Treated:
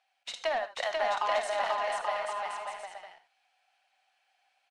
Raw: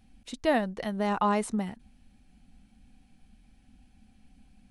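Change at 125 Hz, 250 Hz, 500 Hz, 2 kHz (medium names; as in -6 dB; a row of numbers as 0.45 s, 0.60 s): under -25 dB, -27.0 dB, 0.0 dB, +3.5 dB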